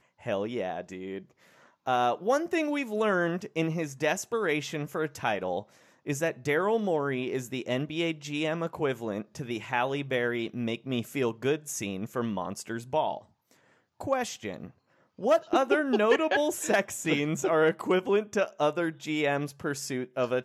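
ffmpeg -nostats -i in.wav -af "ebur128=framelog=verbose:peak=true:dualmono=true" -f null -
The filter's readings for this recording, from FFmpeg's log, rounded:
Integrated loudness:
  I:         -26.2 LUFS
  Threshold: -36.6 LUFS
Loudness range:
  LRA:         6.0 LU
  Threshold: -46.5 LUFS
  LRA low:   -29.3 LUFS
  LRA high:  -23.3 LUFS
True peak:
  Peak:      -11.5 dBFS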